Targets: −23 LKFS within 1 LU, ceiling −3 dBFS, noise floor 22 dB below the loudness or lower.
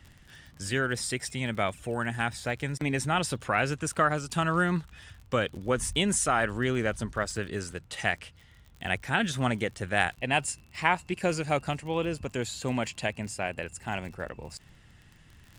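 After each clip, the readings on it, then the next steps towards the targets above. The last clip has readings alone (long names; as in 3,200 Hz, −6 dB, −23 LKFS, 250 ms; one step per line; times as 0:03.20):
crackle rate 36 per second; integrated loudness −29.5 LKFS; sample peak −6.5 dBFS; target loudness −23.0 LKFS
→ click removal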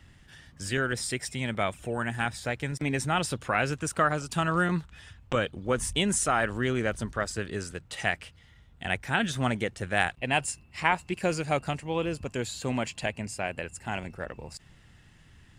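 crackle rate 0 per second; integrated loudness −29.5 LKFS; sample peak −6.5 dBFS; target loudness −23.0 LKFS
→ level +6.5 dB
brickwall limiter −3 dBFS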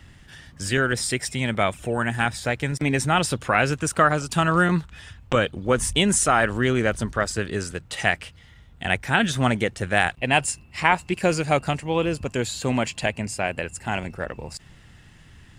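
integrated loudness −23.0 LKFS; sample peak −3.0 dBFS; background noise floor −50 dBFS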